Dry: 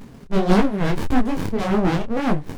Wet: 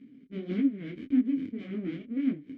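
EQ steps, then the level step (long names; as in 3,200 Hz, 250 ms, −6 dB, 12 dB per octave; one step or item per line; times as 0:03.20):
formant filter i
low-shelf EQ 72 Hz −9 dB
high-shelf EQ 2,400 Hz −11.5 dB
0.0 dB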